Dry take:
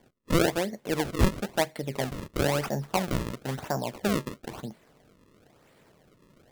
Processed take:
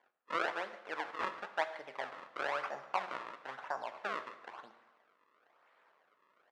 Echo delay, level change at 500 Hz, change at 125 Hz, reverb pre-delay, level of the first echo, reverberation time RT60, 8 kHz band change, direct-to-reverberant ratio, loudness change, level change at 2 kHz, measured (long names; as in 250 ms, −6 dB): 145 ms, −13.0 dB, below −35 dB, 6 ms, −19.5 dB, 0.90 s, −24.0 dB, 9.5 dB, −10.0 dB, −4.0 dB